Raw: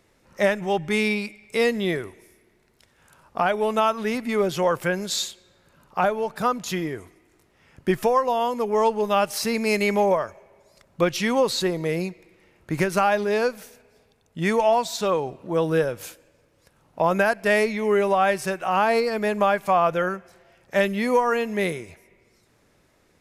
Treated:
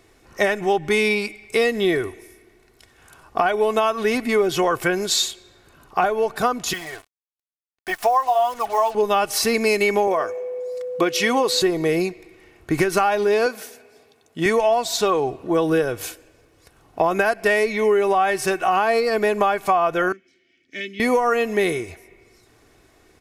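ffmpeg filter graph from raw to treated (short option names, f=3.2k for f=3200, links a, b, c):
-filter_complex "[0:a]asettb=1/sr,asplit=3[a][b][c];[a]atrim=end=6.734[d];[b]atrim=start=6.73:end=8.95,asetpts=PTS-STARTPTS,afade=t=in:d=0.004:c=qsin,afade=t=out:st=2.216:d=0.004:c=qsin,flanger=delay=0.6:depth=3.7:regen=-23:speed=1.1:shape=sinusoidal,lowshelf=f=500:t=q:w=3:g=-10.5,acrusher=bits=6:mix=0:aa=0.5[e];[c]atrim=start=8.946[f];[d][e]acrossfade=d=0.004:c1=hsin:c2=qsin[g];[g][f]acrossfade=d=0.004:c1=qsin:c2=hsin,asettb=1/sr,asplit=3[h][i][j];[h]atrim=end=10.074[k];[i]atrim=start=10.07:end=11.62,asetpts=PTS-STARTPTS,afade=t=in:d=0.004:c=qsin,afade=t=out:st=1.546:d=0.004:c=qsin,highpass=200,aeval=exprs='val(0)+0.0316*sin(2*PI*500*n/s)':c=same[l];[j]atrim=start=11.616[m];[k][l]acrossfade=d=0.004:c1=hsin:c2=qsin[n];[n][m]acrossfade=d=0.004:c1=qsin:c2=hsin,asettb=1/sr,asplit=3[o][p][q];[o]atrim=end=13.464[r];[p]atrim=start=13.46:end=14.46,asetpts=PTS-STARTPTS,afade=t=in:d=0.004:c=qsin,afade=t=out:st=0.996:d=0.004:c=qsin,highpass=170,asplit=2[s][t];[t]adelay=13,volume=-14dB[u];[s][u]amix=inputs=2:normalize=0,atrim=end_sample=44100[v];[q]atrim=start=14.456[w];[r][v]acrossfade=d=0.004:c1=hsin:c2=qsin[x];[x][w]acrossfade=d=0.004:c1=qsin:c2=hsin,asettb=1/sr,asplit=3[y][z][aa];[y]atrim=end=20.124[ab];[z]atrim=start=20.12:end=21,asetpts=PTS-STARTPTS,afade=t=in:d=0.004:c=qsin,afade=t=out:st=0.876:d=0.004:c=qsin,asplit=3[ac][ad][ae];[ac]bandpass=f=270:t=q:w=8,volume=0dB[af];[ad]bandpass=f=2.29k:t=q:w=8,volume=-6dB[ag];[ae]bandpass=f=3.01k:t=q:w=8,volume=-9dB[ah];[af][ag][ah]amix=inputs=3:normalize=0,equalizer=f=5.9k:w=1.1:g=12.5[ai];[aa]atrim=start=20.996[aj];[ab][ai]acrossfade=d=0.004:c1=hsin:c2=qsin[ak];[ak][aj]acrossfade=d=0.004:c1=qsin:c2=hsin,aecho=1:1:2.7:0.51,acompressor=threshold=-21dB:ratio=6,volume=6dB"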